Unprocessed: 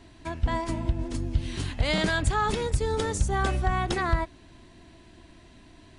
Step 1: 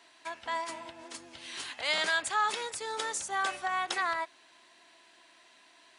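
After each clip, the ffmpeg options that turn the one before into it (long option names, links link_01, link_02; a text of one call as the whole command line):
ffmpeg -i in.wav -af "highpass=850" out.wav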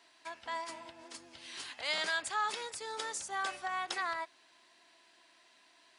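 ffmpeg -i in.wav -af "equalizer=frequency=4900:width=4.4:gain=4,volume=-5dB" out.wav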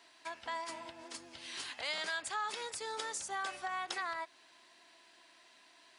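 ffmpeg -i in.wav -af "acompressor=threshold=-40dB:ratio=2,volume=2dB" out.wav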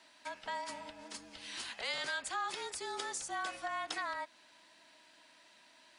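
ffmpeg -i in.wav -af "afreqshift=-39" out.wav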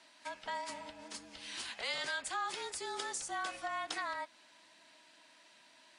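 ffmpeg -i in.wav -ar 32000 -c:a libvorbis -b:a 48k out.ogg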